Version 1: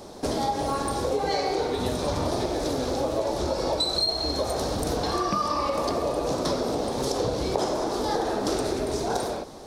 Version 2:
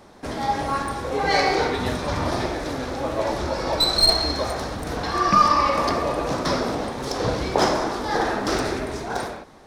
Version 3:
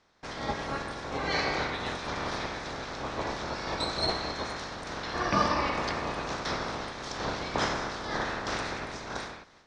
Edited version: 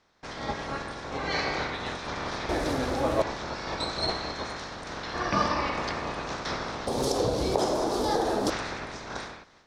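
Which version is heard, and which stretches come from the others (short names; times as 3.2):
3
2.49–3.22 from 2
6.87–8.5 from 1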